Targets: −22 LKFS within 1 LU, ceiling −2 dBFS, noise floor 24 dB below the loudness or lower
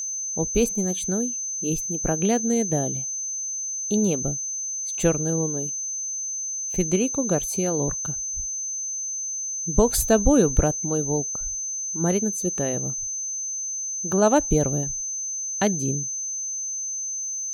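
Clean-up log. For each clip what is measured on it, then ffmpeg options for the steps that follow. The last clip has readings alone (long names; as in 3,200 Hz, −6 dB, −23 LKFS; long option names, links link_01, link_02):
interfering tone 6,200 Hz; level of the tone −27 dBFS; integrated loudness −24.0 LKFS; sample peak −4.0 dBFS; target loudness −22.0 LKFS
→ -af "bandreject=frequency=6200:width=30"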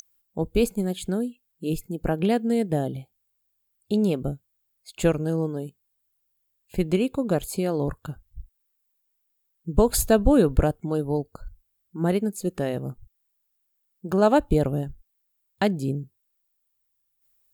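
interfering tone none found; integrated loudness −25.0 LKFS; sample peak −4.0 dBFS; target loudness −22.0 LKFS
→ -af "volume=3dB,alimiter=limit=-2dB:level=0:latency=1"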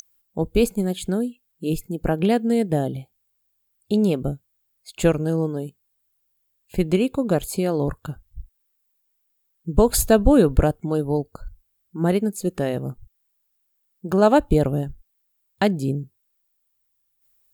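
integrated loudness −22.0 LKFS; sample peak −2.0 dBFS; background noise floor −71 dBFS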